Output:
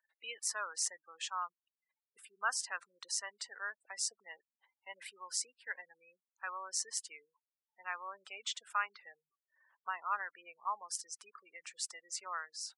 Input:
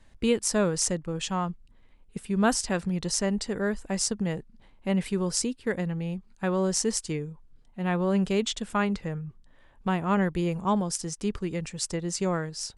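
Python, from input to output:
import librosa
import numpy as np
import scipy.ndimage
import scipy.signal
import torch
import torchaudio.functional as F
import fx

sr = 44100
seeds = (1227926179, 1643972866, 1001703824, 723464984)

y = fx.spec_gate(x, sr, threshold_db=-25, keep='strong')
y = fx.ladder_highpass(y, sr, hz=1000.0, resonance_pct=40)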